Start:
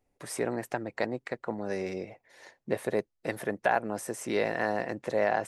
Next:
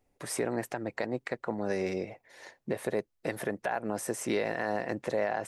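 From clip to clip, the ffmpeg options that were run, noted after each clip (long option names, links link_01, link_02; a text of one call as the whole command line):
ffmpeg -i in.wav -af "alimiter=limit=-22dB:level=0:latency=1:release=127,volume=2.5dB" out.wav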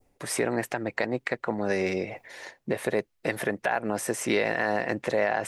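ffmpeg -i in.wav -af "adynamicequalizer=threshold=0.00355:dfrequency=2400:dqfactor=0.82:tfrequency=2400:tqfactor=0.82:attack=5:release=100:ratio=0.375:range=2.5:mode=boostabove:tftype=bell,areverse,acompressor=mode=upward:threshold=-38dB:ratio=2.5,areverse,volume=4dB" out.wav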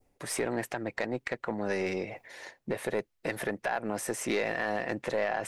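ffmpeg -i in.wav -af "aeval=exprs='(tanh(7.08*val(0)+0.15)-tanh(0.15))/7.08':channel_layout=same,volume=-3dB" out.wav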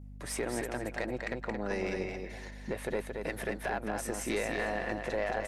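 ffmpeg -i in.wav -af "aeval=exprs='val(0)+0.00794*(sin(2*PI*50*n/s)+sin(2*PI*2*50*n/s)/2+sin(2*PI*3*50*n/s)/3+sin(2*PI*4*50*n/s)/4+sin(2*PI*5*50*n/s)/5)':channel_layout=same,aecho=1:1:224|448|672:0.562|0.129|0.0297,volume=-3.5dB" out.wav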